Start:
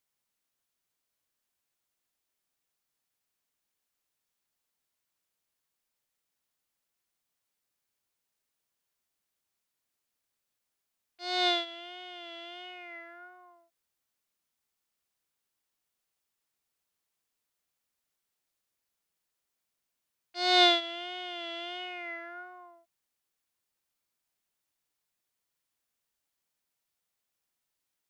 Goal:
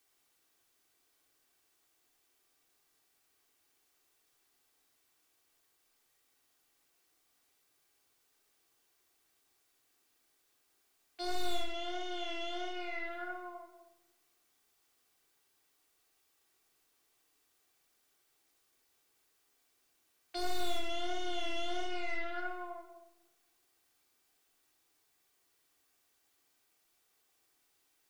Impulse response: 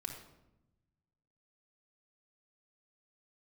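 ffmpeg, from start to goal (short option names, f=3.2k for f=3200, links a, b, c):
-filter_complex "[0:a]aeval=exprs='(tanh(70.8*val(0)+0.5)-tanh(0.5))/70.8':c=same,acrossover=split=120|2100[a][b][c];[a]acompressor=threshold=-49dB:ratio=4[d];[b]acompressor=threshold=-54dB:ratio=4[e];[c]acompressor=threshold=-58dB:ratio=4[f];[d][e][f]amix=inputs=3:normalize=0,lowshelf=f=230:t=q:w=1.5:g=-6[g];[1:a]atrim=start_sample=2205[h];[g][h]afir=irnorm=-1:irlink=0,volume=14dB"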